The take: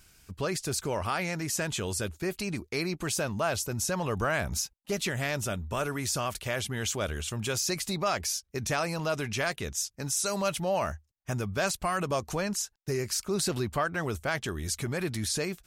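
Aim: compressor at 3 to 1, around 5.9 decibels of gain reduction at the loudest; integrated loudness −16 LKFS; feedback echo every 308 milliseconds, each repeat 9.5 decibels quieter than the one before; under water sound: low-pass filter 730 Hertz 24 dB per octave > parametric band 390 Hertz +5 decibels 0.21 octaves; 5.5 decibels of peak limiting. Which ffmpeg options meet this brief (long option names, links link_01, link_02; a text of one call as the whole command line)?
ffmpeg -i in.wav -af "acompressor=threshold=-32dB:ratio=3,alimiter=level_in=2.5dB:limit=-24dB:level=0:latency=1,volume=-2.5dB,lowpass=frequency=730:width=0.5412,lowpass=frequency=730:width=1.3066,equalizer=frequency=390:width_type=o:width=0.21:gain=5,aecho=1:1:308|616|924|1232:0.335|0.111|0.0365|0.012,volume=22.5dB" out.wav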